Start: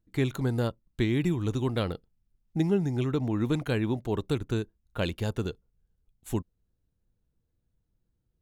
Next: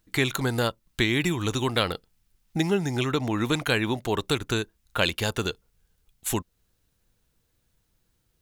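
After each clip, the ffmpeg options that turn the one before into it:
ffmpeg -i in.wav -filter_complex "[0:a]tiltshelf=frequency=660:gain=-7.5,asplit=2[link_01][link_02];[link_02]acompressor=threshold=-39dB:ratio=6,volume=3dB[link_03];[link_01][link_03]amix=inputs=2:normalize=0,volume=3dB" out.wav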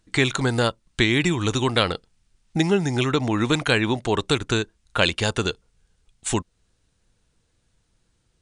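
ffmpeg -i in.wav -af "volume=4.5dB" -ar 22050 -c:a libmp3lame -b:a 160k out.mp3

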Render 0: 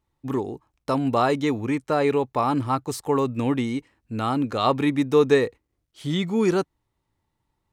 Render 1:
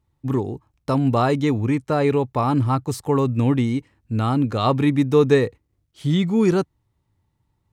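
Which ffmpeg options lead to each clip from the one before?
ffmpeg -i in.wav -af "equalizer=frequency=100:width_type=o:width=2.1:gain=10.5" out.wav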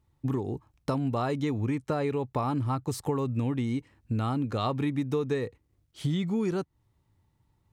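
ffmpeg -i in.wav -af "acompressor=threshold=-26dB:ratio=6" out.wav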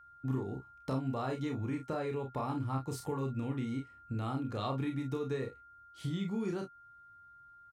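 ffmpeg -i in.wav -af "aecho=1:1:30|45|61:0.562|0.376|0.133,aeval=exprs='val(0)+0.00501*sin(2*PI*1400*n/s)':channel_layout=same,volume=-8.5dB" out.wav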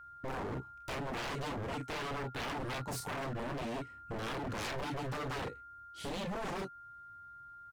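ffmpeg -i in.wav -af "aeval=exprs='0.0119*(abs(mod(val(0)/0.0119+3,4)-2)-1)':channel_layout=same,volume=5dB" out.wav

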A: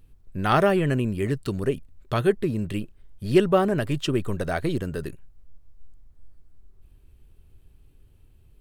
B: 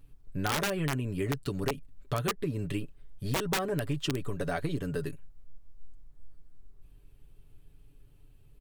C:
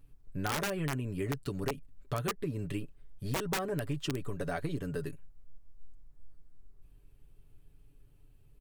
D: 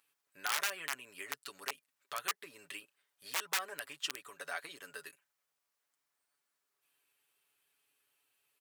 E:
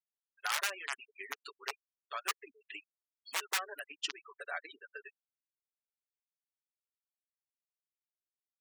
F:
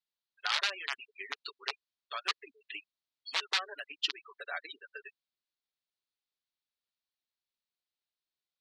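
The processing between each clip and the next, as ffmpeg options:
ffmpeg -i in.wav -af "aecho=1:1:7:0.62,aeval=exprs='(mod(3.76*val(0)+1,2)-1)/3.76':channel_layout=same,acompressor=threshold=-24dB:ratio=10,volume=-3dB" out.wav
ffmpeg -i in.wav -af "equalizer=frequency=3500:width_type=o:width=0.77:gain=-2.5,volume=-3dB" out.wav
ffmpeg -i in.wav -af "highpass=1300,volume=3dB" out.wav
ffmpeg -i in.wav -af "afftfilt=real='re*gte(hypot(re,im),0.01)':imag='im*gte(hypot(re,im),0.01)':win_size=1024:overlap=0.75,volume=1dB" out.wav
ffmpeg -i in.wav -af "lowpass=frequency=4100:width_type=q:width=2.9" out.wav

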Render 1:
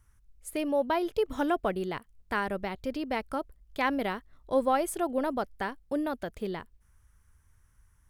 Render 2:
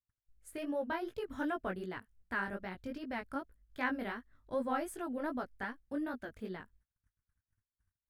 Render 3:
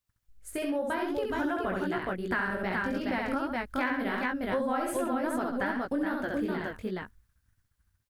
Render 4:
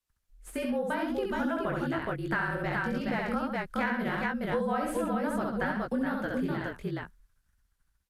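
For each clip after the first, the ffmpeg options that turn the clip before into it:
ffmpeg -i in.wav -af "flanger=delay=16:depth=5.5:speed=2.6,equalizer=frequency=100:width_type=o:width=0.67:gain=7,equalizer=frequency=250:width_type=o:width=0.67:gain=7,equalizer=frequency=1600:width_type=o:width=0.67:gain=9,agate=range=-32dB:threshold=-58dB:ratio=16:detection=peak,volume=-8.5dB" out.wav
ffmpeg -i in.wav -af "dynaudnorm=framelen=460:gausssize=7:maxgain=4.5dB,aecho=1:1:67|135|421:0.668|0.251|0.631,acompressor=threshold=-36dB:ratio=5,volume=8.5dB" out.wav
ffmpeg -i in.wav -filter_complex "[0:a]afreqshift=-40,acrossover=split=160|1100|3400[link_01][link_02][link_03][link_04];[link_04]aeval=exprs='clip(val(0),-1,0.00237)':channel_layout=same[link_05];[link_01][link_02][link_03][link_05]amix=inputs=4:normalize=0" -ar 32000 -c:a libvorbis -b:a 128k out.ogg

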